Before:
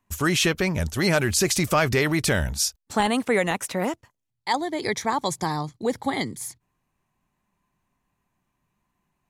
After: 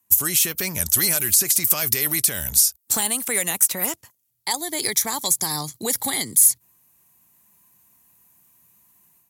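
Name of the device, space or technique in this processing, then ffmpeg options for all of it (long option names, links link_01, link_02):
FM broadcast chain: -filter_complex "[0:a]highpass=66,dynaudnorm=framelen=510:gausssize=3:maxgain=11dB,acrossover=split=940|2100|7900[link_01][link_02][link_03][link_04];[link_01]acompressor=threshold=-23dB:ratio=4[link_05];[link_02]acompressor=threshold=-30dB:ratio=4[link_06];[link_03]acompressor=threshold=-26dB:ratio=4[link_07];[link_04]acompressor=threshold=-31dB:ratio=4[link_08];[link_05][link_06][link_07][link_08]amix=inputs=4:normalize=0,aemphasis=mode=production:type=50fm,alimiter=limit=-9dB:level=0:latency=1:release=291,asoftclip=type=hard:threshold=-12.5dB,lowpass=frequency=15000:width=0.5412,lowpass=frequency=15000:width=1.3066,aemphasis=mode=production:type=50fm,asettb=1/sr,asplit=3[link_09][link_10][link_11];[link_09]atrim=end=3.864[link_12];[link_10]atrim=start=3.86:end=4.51,asetpts=PTS-STARTPTS,afade=type=in:duration=0.004:curve=qsin,afade=type=out:start_time=0.646:duration=0.004:curve=qsin,highshelf=frequency=8100:gain=-7[link_13];[link_11]atrim=start=4.506[link_14];[link_12][link_13]acrossfade=duration=0.004:curve1=hsin:curve2=qsin[link_15];[link_15][link_14]acrossfade=duration=0.004:curve1=qsin:curve2=hsin,volume=-5dB"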